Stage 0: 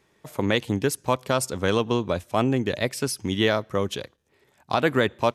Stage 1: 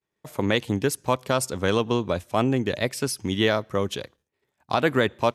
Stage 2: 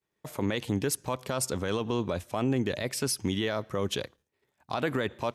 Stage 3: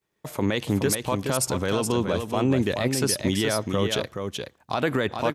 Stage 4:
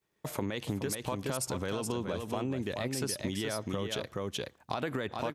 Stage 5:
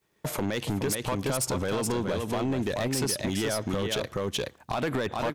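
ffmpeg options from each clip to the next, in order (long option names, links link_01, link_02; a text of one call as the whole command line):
ffmpeg -i in.wav -af "agate=range=-33dB:threshold=-52dB:ratio=3:detection=peak" out.wav
ffmpeg -i in.wav -af "alimiter=limit=-18dB:level=0:latency=1:release=52" out.wav
ffmpeg -i in.wav -af "aecho=1:1:423:0.501,volume=5dB" out.wav
ffmpeg -i in.wav -af "acompressor=threshold=-29dB:ratio=6,volume=-1.5dB" out.wav
ffmpeg -i in.wav -af "volume=30.5dB,asoftclip=hard,volume=-30.5dB,volume=7.5dB" out.wav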